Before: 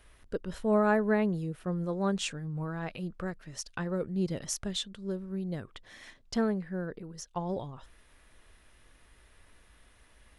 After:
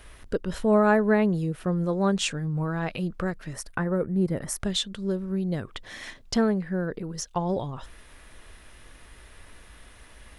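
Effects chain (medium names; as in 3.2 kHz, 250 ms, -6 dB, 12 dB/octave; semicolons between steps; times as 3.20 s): 3.53–4.60 s: high-order bell 4.3 kHz -12.5 dB; in parallel at +1 dB: compression, threshold -40 dBFS, peak gain reduction 18 dB; on the sum: trim +4 dB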